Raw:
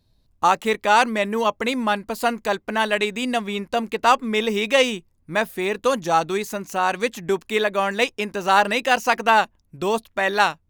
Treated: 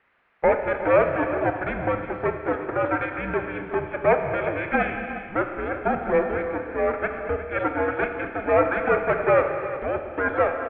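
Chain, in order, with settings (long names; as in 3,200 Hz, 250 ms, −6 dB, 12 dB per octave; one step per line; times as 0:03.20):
lower of the sound and its delayed copy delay 1.1 ms
background noise violet −38 dBFS
on a send: multi-tap delay 229/359 ms −14.5/−13 dB
on the sum: single-sideband voice off tune −310 Hz 350–2,300 Hz
four-comb reverb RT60 2.1 s, combs from 26 ms, DRR 6 dB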